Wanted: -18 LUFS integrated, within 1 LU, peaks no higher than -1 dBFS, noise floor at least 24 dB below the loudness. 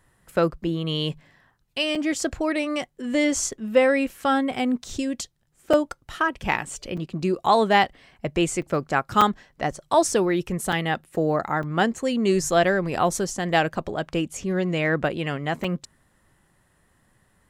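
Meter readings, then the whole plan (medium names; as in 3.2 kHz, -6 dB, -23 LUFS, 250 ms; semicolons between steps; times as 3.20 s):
dropouts 8; longest dropout 4.9 ms; loudness -24.0 LUFS; peak level -5.5 dBFS; loudness target -18.0 LUFS
-> interpolate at 1.95/5.73/6.97/8.62/9.21/10.72/11.63/15.64 s, 4.9 ms; trim +6 dB; peak limiter -1 dBFS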